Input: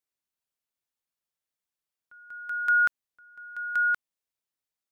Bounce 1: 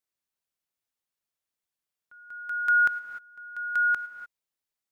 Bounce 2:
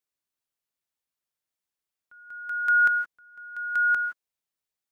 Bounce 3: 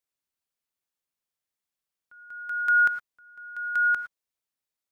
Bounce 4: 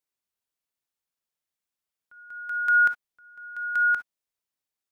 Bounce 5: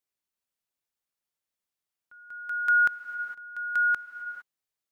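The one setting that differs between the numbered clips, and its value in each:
reverb whose tail is shaped and stops, gate: 320, 190, 130, 80, 480 milliseconds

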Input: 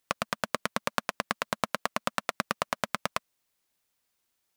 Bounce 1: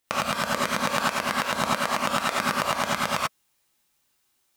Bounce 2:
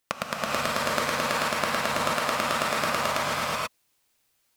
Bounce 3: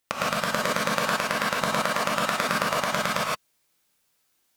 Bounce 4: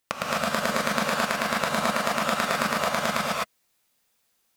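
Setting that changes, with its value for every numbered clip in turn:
reverb whose tail is shaped and stops, gate: 110, 510, 190, 280 milliseconds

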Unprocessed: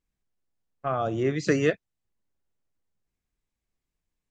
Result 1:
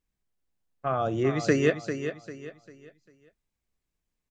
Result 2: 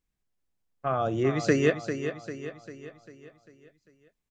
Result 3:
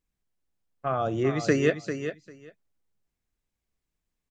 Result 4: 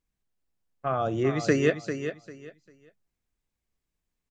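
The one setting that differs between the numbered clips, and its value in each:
repeating echo, feedback: 34, 50, 15, 23%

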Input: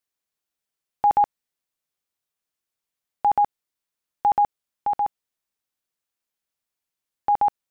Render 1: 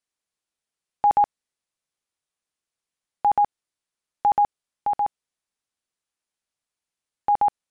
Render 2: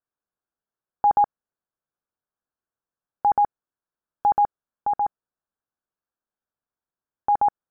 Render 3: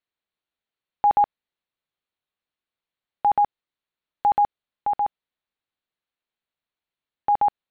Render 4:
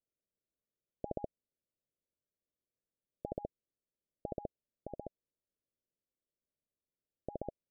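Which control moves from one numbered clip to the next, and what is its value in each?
Butterworth low-pass, frequency: 11,000, 1,700, 4,400, 640 Hertz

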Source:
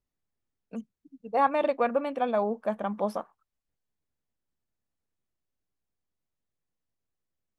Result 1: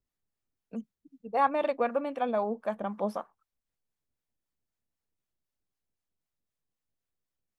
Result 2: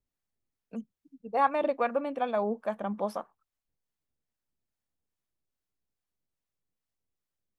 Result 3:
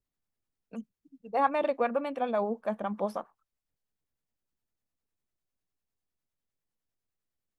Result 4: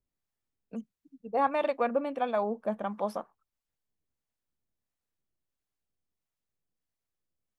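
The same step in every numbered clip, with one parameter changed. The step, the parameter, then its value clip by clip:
two-band tremolo in antiphase, speed: 3.9, 2.4, 9.9, 1.5 Hertz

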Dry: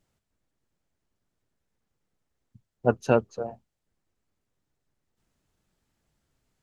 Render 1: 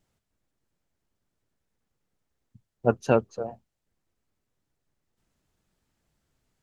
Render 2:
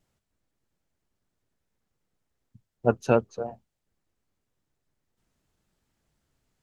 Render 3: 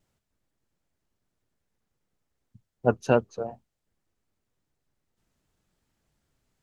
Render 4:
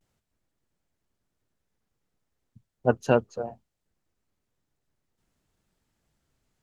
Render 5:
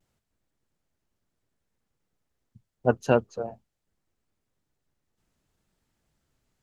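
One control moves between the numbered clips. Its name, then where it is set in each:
pitch vibrato, speed: 7.2, 4.1, 2.6, 0.41, 0.74 Hertz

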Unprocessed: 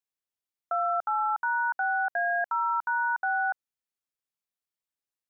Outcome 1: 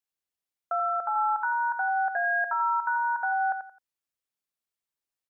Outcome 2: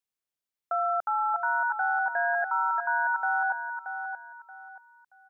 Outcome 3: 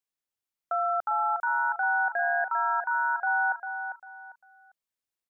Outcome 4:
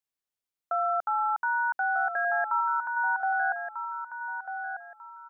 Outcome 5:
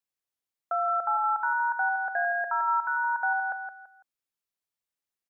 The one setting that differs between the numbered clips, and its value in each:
repeating echo, delay time: 87, 628, 398, 1,244, 167 milliseconds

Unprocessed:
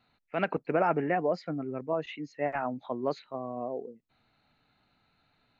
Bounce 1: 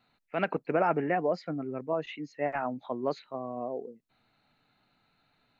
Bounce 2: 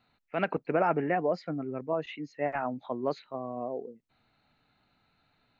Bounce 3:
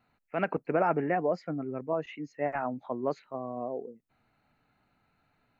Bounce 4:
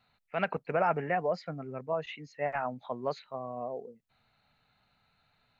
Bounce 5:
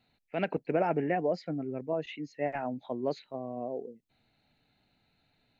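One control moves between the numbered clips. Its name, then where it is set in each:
parametric band, centre frequency: 66, 12,000, 3,800, 310, 1,200 Hertz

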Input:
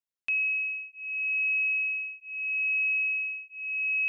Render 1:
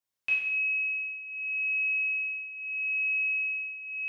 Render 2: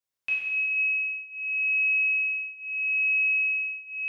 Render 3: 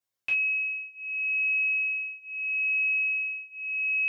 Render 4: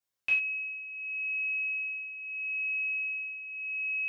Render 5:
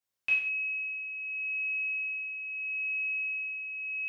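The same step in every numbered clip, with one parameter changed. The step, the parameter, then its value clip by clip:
reverb whose tail is shaped and stops, gate: 320, 530, 80, 130, 220 milliseconds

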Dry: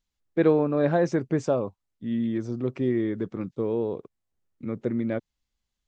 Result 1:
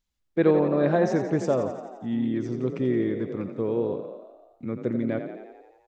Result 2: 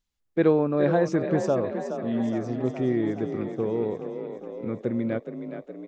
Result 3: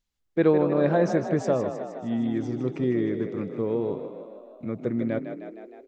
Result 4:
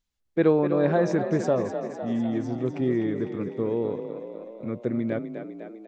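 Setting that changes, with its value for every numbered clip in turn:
echo with shifted repeats, delay time: 86, 418, 155, 251 milliseconds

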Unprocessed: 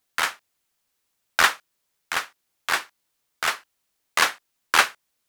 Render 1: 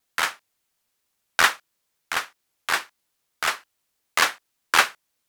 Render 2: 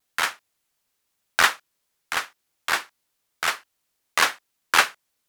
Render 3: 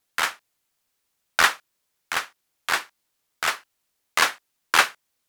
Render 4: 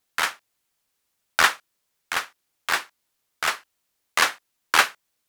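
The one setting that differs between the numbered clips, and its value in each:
pitch vibrato, speed: 2.2, 0.92, 12, 4.8 Hertz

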